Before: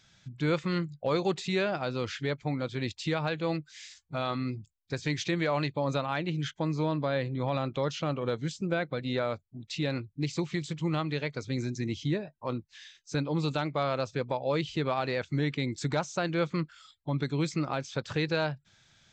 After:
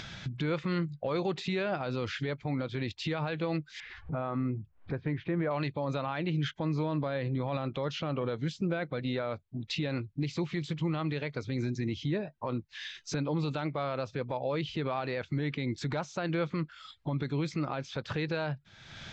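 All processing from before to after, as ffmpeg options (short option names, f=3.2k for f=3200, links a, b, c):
-filter_complex "[0:a]asettb=1/sr,asplit=3[a][b][c];[a]atrim=end=1.864[d];[b]atrim=start=1.86:end=2.26,asetpts=PTS-STARTPTS,afade=t=in:d=0.004:c=qsin,afade=t=out:st=0.396:d=0.004:c=qsin,acrossover=split=3000[e][f];[f]acompressor=threshold=-51dB:ratio=4:attack=1:release=60[g];[e][g]amix=inputs=2:normalize=0,bass=f=250:g=1,treble=f=4k:g=12[h];[c]atrim=start=2.256[i];[d][h]acrossfade=d=0.004:c1=hsin:c2=qsin[j];[j][i]acrossfade=d=0.004:c1=qsin:c2=hsin,asettb=1/sr,asplit=3[k][l][m];[k]atrim=end=3.804[n];[l]atrim=start=3.8:end=5.51,asetpts=PTS-STARTPTS,afade=t=in:d=0.004:c=qsin,afade=t=out:st=1.706:d=0.004:c=qsin,lowpass=1.7k,acompressor=mode=upward:threshold=-45dB:ratio=2.5:attack=3.2:release=140:knee=2.83:detection=peak,aemphasis=mode=reproduction:type=75kf[o];[m]atrim=start=5.506[p];[n][o]acrossfade=d=0.004:c1=hsin:c2=qsin[q];[q][p]acrossfade=d=0.004:c1=qsin:c2=hsin,lowpass=3.9k,acompressor=mode=upward:threshold=-32dB:ratio=2.5,alimiter=level_in=1.5dB:limit=-24dB:level=0:latency=1:release=56,volume=-1.5dB,volume=2.5dB"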